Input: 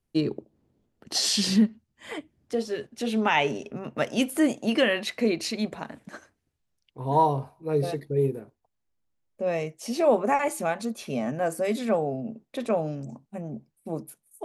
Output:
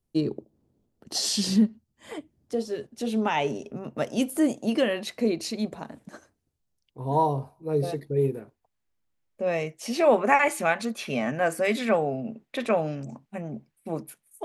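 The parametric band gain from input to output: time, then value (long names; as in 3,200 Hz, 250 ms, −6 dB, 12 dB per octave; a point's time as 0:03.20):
parametric band 2,100 Hz 1.8 octaves
0:07.66 −7 dB
0:08.39 +3.5 dB
0:09.61 +3.5 dB
0:10.26 +9.5 dB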